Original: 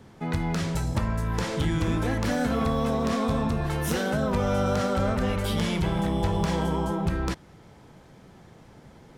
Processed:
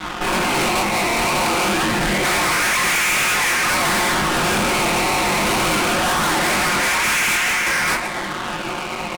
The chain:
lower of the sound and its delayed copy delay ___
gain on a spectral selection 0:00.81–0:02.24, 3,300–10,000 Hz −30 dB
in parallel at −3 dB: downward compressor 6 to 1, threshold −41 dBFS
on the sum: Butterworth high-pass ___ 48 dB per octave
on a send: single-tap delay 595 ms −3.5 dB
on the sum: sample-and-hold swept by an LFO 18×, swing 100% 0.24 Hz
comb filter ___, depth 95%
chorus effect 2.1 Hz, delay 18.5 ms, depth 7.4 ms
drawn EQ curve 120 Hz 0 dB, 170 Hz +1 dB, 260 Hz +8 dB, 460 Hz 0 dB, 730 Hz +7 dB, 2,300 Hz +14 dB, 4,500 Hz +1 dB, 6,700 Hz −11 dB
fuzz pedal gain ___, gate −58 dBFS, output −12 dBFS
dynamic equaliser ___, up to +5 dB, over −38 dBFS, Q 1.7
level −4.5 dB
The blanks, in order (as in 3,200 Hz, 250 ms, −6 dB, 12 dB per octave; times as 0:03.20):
0.84 ms, 2,100 Hz, 5.6 ms, 50 dB, 9,100 Hz